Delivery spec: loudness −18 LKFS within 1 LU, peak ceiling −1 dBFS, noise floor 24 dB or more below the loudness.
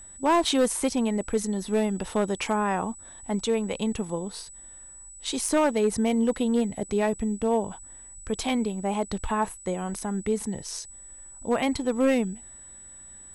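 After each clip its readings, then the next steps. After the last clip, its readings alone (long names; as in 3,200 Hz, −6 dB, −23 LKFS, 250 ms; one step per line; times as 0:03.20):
share of clipped samples 0.6%; peaks flattened at −16.0 dBFS; interfering tone 7,900 Hz; level of the tone −44 dBFS; integrated loudness −27.0 LKFS; sample peak −16.0 dBFS; target loudness −18.0 LKFS
→ clipped peaks rebuilt −16 dBFS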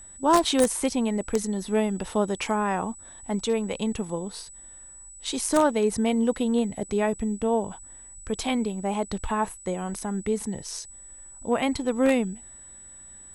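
share of clipped samples 0.0%; interfering tone 7,900 Hz; level of the tone −44 dBFS
→ notch filter 7,900 Hz, Q 30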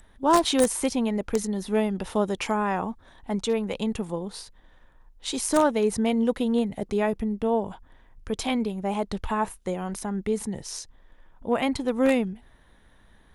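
interfering tone none found; integrated loudness −26.5 LKFS; sample peak −7.0 dBFS; target loudness −18.0 LKFS
→ level +8.5 dB
brickwall limiter −1 dBFS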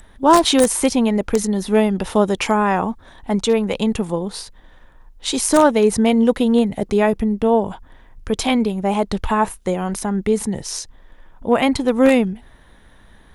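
integrated loudness −18.0 LKFS; sample peak −1.0 dBFS; background noise floor −48 dBFS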